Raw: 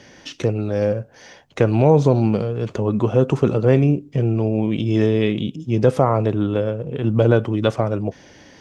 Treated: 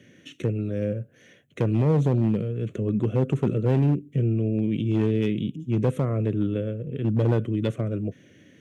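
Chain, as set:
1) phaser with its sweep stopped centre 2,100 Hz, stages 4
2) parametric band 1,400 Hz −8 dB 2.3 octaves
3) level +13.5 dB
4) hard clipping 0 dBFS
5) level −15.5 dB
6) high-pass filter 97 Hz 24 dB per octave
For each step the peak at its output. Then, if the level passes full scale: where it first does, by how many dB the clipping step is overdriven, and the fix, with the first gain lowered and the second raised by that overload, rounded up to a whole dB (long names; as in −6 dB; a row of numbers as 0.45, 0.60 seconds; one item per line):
−5.0, −6.5, +7.0, 0.0, −15.5, −10.5 dBFS
step 3, 7.0 dB
step 3 +6.5 dB, step 5 −8.5 dB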